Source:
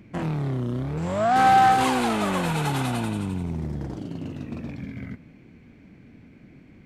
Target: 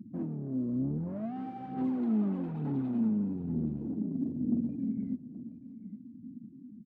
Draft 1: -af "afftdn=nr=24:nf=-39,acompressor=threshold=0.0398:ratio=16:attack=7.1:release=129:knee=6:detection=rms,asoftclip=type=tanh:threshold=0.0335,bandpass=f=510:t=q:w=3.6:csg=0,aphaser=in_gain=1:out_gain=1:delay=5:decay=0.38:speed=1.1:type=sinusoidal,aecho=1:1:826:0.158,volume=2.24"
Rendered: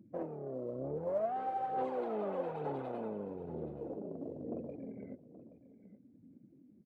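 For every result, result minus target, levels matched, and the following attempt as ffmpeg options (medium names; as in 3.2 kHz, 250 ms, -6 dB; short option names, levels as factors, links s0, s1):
500 Hz band +14.0 dB; compression: peak gain reduction +6 dB
-af "afftdn=nr=24:nf=-39,acompressor=threshold=0.0398:ratio=16:attack=7.1:release=129:knee=6:detection=rms,asoftclip=type=tanh:threshold=0.0335,bandpass=f=240:t=q:w=3.6:csg=0,aphaser=in_gain=1:out_gain=1:delay=5:decay=0.38:speed=1.1:type=sinusoidal,aecho=1:1:826:0.158,volume=2.24"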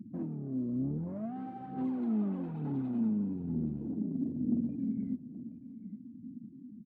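compression: peak gain reduction +6 dB
-af "afftdn=nr=24:nf=-39,acompressor=threshold=0.0841:ratio=16:attack=7.1:release=129:knee=6:detection=rms,asoftclip=type=tanh:threshold=0.0335,bandpass=f=240:t=q:w=3.6:csg=0,aphaser=in_gain=1:out_gain=1:delay=5:decay=0.38:speed=1.1:type=sinusoidal,aecho=1:1:826:0.158,volume=2.24"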